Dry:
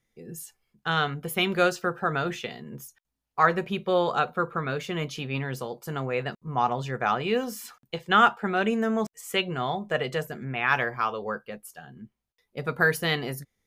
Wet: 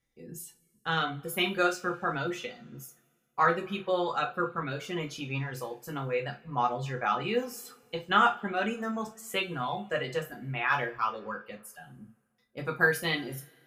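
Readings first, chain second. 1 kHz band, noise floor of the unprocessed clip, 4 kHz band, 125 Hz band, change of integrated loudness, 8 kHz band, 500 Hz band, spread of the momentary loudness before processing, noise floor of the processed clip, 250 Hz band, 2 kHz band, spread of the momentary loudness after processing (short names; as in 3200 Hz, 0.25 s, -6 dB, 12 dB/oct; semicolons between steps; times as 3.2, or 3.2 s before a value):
-3.5 dB, -83 dBFS, -3.5 dB, -4.5 dB, -3.5 dB, -2.5 dB, -4.5 dB, 17 LU, -73 dBFS, -5.0 dB, -3.0 dB, 17 LU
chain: reverb removal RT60 1.1 s; two-slope reverb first 0.25 s, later 2 s, from -28 dB, DRR 0.5 dB; gain -5.5 dB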